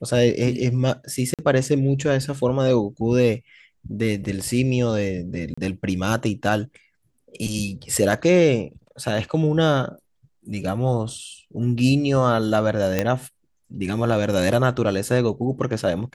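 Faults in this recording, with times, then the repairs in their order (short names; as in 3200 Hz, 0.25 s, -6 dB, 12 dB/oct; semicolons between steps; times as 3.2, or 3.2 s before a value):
1.34–1.39 gap 47 ms
5.54–5.58 gap 35 ms
12.99 pop -6 dBFS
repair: de-click; interpolate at 1.34, 47 ms; interpolate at 5.54, 35 ms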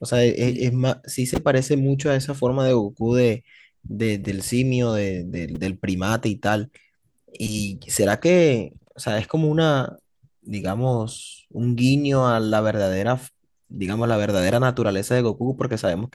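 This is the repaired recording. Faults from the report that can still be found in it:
none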